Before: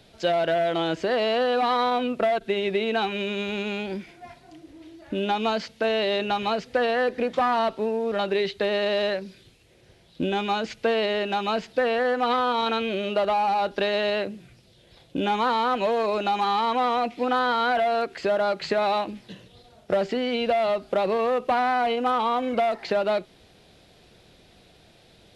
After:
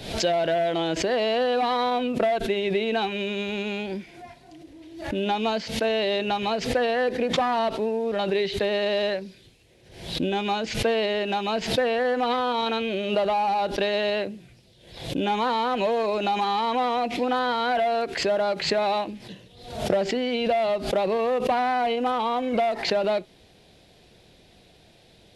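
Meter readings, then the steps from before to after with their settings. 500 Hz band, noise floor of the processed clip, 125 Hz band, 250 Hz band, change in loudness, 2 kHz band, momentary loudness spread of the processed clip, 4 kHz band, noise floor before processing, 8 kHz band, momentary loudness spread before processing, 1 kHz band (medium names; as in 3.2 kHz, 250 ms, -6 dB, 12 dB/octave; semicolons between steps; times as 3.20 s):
0.0 dB, -55 dBFS, +3.0 dB, +1.0 dB, 0.0 dB, -1.0 dB, 6 LU, +1.5 dB, -56 dBFS, no reading, 5 LU, -1.0 dB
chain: peaking EQ 1.3 kHz -5.5 dB 0.47 oct; swell ahead of each attack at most 80 dB/s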